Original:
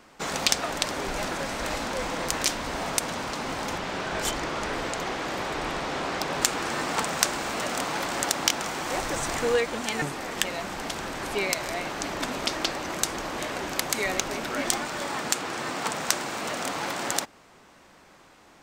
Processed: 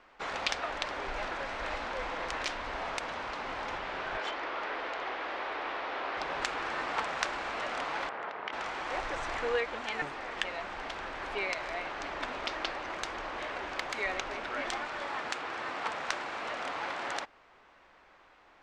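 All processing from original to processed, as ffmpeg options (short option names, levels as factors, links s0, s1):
-filter_complex "[0:a]asettb=1/sr,asplit=3[s0][s1][s2];[s0]atrim=end=4.174[s3];[s1]atrim=start=4.17:end=6.17,asetpts=PTS-STARTPTS,afade=t=in:d=0.004:c=qsin,afade=t=out:st=1.996:d=0.004:c=qsin,acrossover=split=210 6000:gain=0.0631 1 0.178[s4][s5][s6];[s4][s5][s6]amix=inputs=3:normalize=0,aeval=exprs='val(0)+0.001*(sin(2*PI*60*n/s)+sin(2*PI*2*60*n/s)/2+sin(2*PI*3*60*n/s)/3+sin(2*PI*4*60*n/s)/4+sin(2*PI*5*60*n/s)/5)':c=same[s7];[s2]atrim=start=6.166[s8];[s3][s7]acrossfade=d=0.004:c1=hsin:c2=qsin[s9];[s9][s8]acrossfade=d=0.004:c1=qsin:c2=hsin,asettb=1/sr,asplit=3[s10][s11][s12];[s10]atrim=end=8.094[s13];[s11]atrim=start=8.09:end=8.53,asetpts=PTS-STARTPTS,afade=t=in:d=0.004:c=qsin,afade=t=out:st=0.436:d=0.004:c=qsin,aeval=exprs='val(0)*sin(2*PI*120*n/s)':c=same,highpass=180,lowpass=2000[s14];[s12]atrim=start=8.526[s15];[s13][s14]acrossfade=d=0.004:c1=hsin:c2=qsin[s16];[s16][s15]acrossfade=d=0.004:c1=qsin:c2=hsin,lowpass=2800,equalizer=f=170:w=0.59:g=-14,volume=0.75"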